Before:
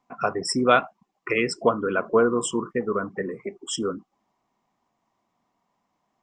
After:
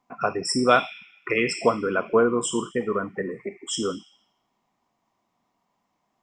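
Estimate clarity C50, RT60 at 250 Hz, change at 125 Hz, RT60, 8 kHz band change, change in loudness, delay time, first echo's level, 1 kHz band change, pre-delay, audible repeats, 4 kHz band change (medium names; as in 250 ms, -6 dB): 10.0 dB, 1.1 s, 0.0 dB, 1.1 s, +1.5 dB, 0.0 dB, no echo, no echo, 0.0 dB, 20 ms, no echo, +1.5 dB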